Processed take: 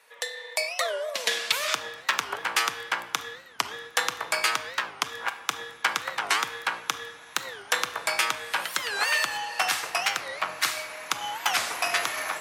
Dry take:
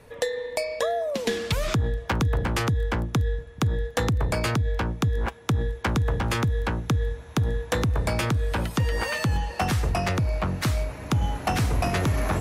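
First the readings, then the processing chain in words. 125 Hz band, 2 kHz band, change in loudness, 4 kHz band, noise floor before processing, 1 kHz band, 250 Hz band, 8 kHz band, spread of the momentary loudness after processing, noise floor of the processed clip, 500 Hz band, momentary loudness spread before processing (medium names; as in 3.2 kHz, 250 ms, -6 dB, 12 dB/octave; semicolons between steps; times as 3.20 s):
-32.5 dB, +5.5 dB, -1.5 dB, +6.5 dB, -42 dBFS, +1.5 dB, -20.0 dB, +6.0 dB, 7 LU, -48 dBFS, -7.5 dB, 3 LU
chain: high-pass 1.2 kHz 12 dB/octave; level rider gain up to 6 dB; simulated room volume 810 m³, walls mixed, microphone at 0.61 m; warped record 45 rpm, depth 250 cents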